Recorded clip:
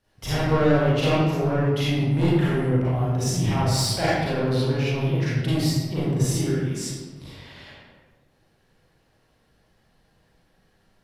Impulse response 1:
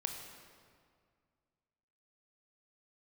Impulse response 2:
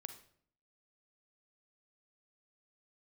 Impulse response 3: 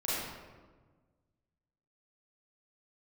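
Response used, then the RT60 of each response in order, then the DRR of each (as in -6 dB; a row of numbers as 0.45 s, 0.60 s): 3; 2.0 s, 0.60 s, 1.4 s; 3.5 dB, 7.5 dB, -10.0 dB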